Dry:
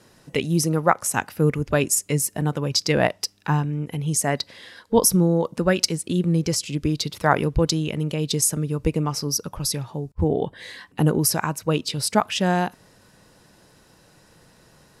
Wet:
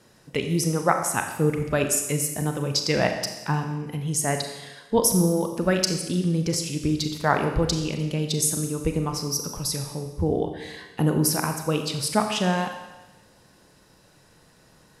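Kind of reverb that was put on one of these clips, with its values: Schroeder reverb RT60 1.1 s, combs from 29 ms, DRR 5 dB; gain -3 dB

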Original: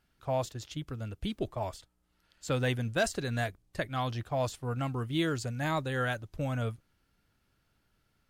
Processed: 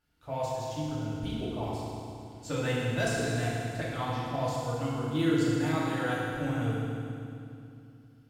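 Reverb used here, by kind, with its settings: FDN reverb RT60 2.6 s, low-frequency decay 1.35×, high-frequency decay 0.9×, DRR -8 dB; gain -7.5 dB

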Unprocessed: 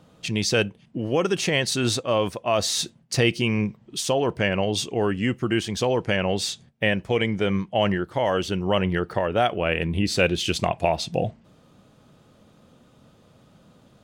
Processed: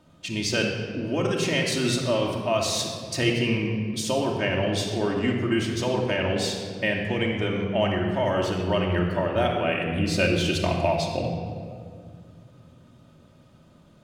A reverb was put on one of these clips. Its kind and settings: shoebox room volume 3800 m³, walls mixed, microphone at 2.7 m; gain -5 dB

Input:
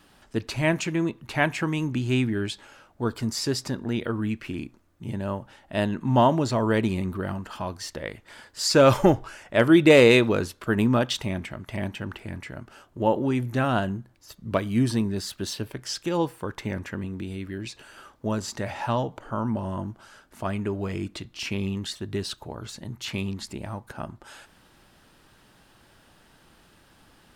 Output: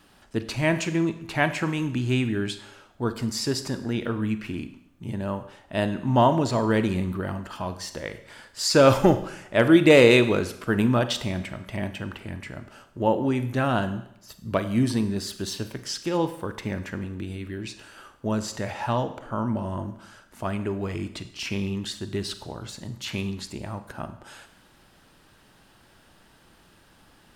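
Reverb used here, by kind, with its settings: Schroeder reverb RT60 0.75 s, combs from 33 ms, DRR 10.5 dB

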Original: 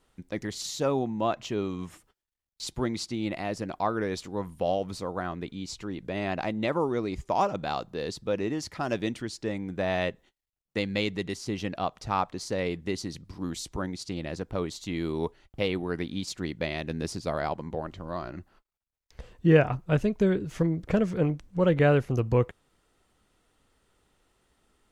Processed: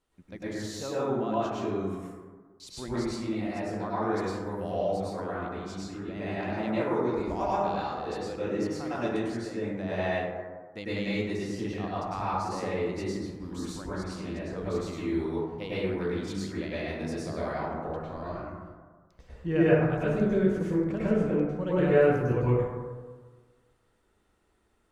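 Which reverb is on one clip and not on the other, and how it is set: plate-style reverb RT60 1.5 s, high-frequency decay 0.3×, pre-delay 90 ms, DRR -9.5 dB; gain -11.5 dB

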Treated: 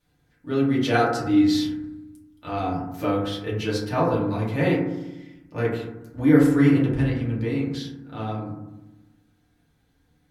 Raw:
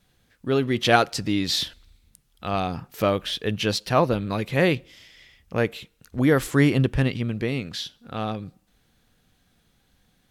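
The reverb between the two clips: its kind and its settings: FDN reverb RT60 0.97 s, low-frequency decay 1.5×, high-frequency decay 0.25×, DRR -7.5 dB; gain -11 dB

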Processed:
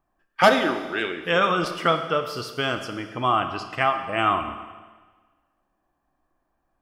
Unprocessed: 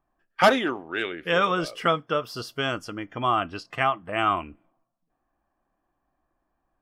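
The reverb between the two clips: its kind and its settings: Schroeder reverb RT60 1.4 s, combs from 28 ms, DRR 7.5 dB; gain +1.5 dB

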